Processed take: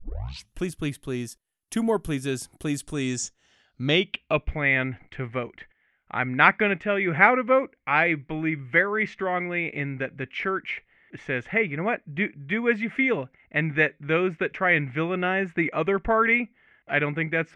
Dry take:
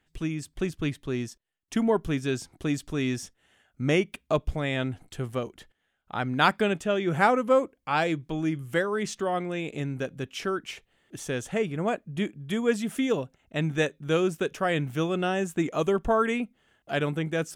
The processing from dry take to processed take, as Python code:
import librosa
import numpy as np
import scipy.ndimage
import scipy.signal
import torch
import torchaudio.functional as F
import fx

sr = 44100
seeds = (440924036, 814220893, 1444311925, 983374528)

y = fx.tape_start_head(x, sr, length_s=0.66)
y = fx.filter_sweep_lowpass(y, sr, from_hz=11000.0, to_hz=2100.0, start_s=2.75, end_s=4.54, q=6.1)